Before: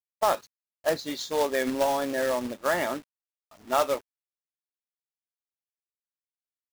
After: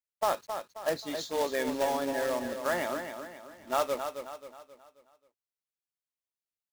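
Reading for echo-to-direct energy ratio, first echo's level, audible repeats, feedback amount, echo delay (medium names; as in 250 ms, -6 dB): -7.0 dB, -8.0 dB, 4, 43%, 267 ms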